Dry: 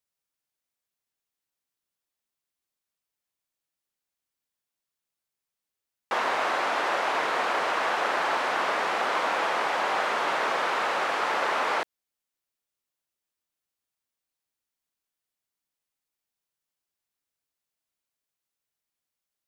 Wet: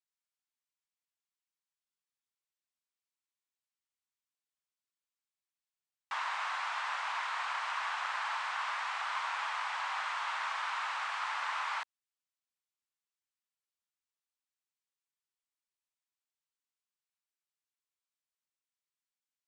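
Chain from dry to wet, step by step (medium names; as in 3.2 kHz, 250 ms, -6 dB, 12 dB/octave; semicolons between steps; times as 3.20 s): elliptic band-pass 950–8600 Hz, stop band 60 dB; trim -7.5 dB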